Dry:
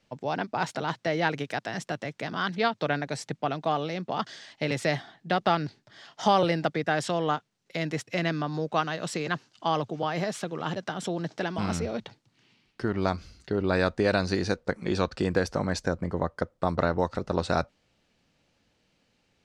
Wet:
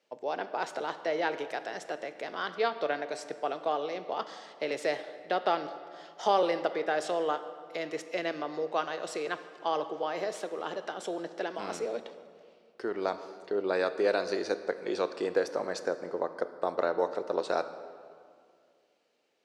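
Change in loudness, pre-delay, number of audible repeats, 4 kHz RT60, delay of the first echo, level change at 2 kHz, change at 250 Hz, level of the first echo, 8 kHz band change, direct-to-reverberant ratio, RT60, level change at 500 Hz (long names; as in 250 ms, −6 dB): −3.5 dB, 16 ms, no echo audible, 1.4 s, no echo audible, −5.0 dB, −9.0 dB, no echo audible, −6.0 dB, 10.5 dB, 2.2 s, −1.0 dB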